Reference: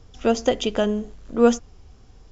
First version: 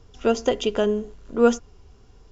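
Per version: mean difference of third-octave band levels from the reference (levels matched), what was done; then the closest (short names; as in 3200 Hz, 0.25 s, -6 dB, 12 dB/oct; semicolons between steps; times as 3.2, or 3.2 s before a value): 1.0 dB: small resonant body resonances 410/1000/1400/2800 Hz, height 7 dB; gain -2.5 dB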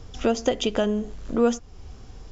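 2.5 dB: compressor 2:1, threshold -32 dBFS, peak gain reduction 12 dB; gain +6.5 dB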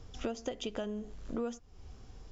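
4.5 dB: compressor 8:1, threshold -32 dBFS, peak gain reduction 21 dB; gain -2 dB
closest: first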